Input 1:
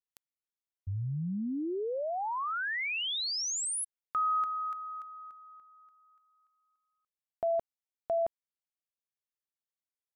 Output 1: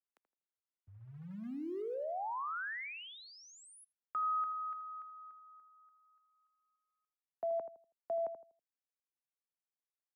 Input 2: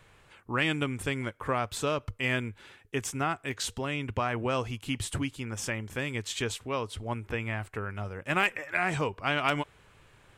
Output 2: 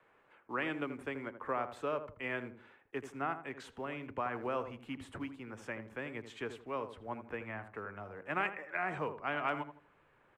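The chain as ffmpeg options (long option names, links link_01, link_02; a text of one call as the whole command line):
ffmpeg -i in.wav -filter_complex "[0:a]acrossover=split=200|480|5200[link_01][link_02][link_03][link_04];[link_02]acrusher=bits=4:mode=log:mix=0:aa=0.000001[link_05];[link_01][link_05][link_03][link_04]amix=inputs=4:normalize=0,acrossover=split=220 2200:gain=0.0708 1 0.1[link_06][link_07][link_08];[link_06][link_07][link_08]amix=inputs=3:normalize=0,asplit=2[link_09][link_10];[link_10]adelay=81,lowpass=frequency=1100:poles=1,volume=-8.5dB,asplit=2[link_11][link_12];[link_12]adelay=81,lowpass=frequency=1100:poles=1,volume=0.32,asplit=2[link_13][link_14];[link_14]adelay=81,lowpass=frequency=1100:poles=1,volume=0.32,asplit=2[link_15][link_16];[link_16]adelay=81,lowpass=frequency=1100:poles=1,volume=0.32[link_17];[link_09][link_11][link_13][link_15][link_17]amix=inputs=5:normalize=0,asubboost=boost=2:cutoff=180,volume=-5dB" out.wav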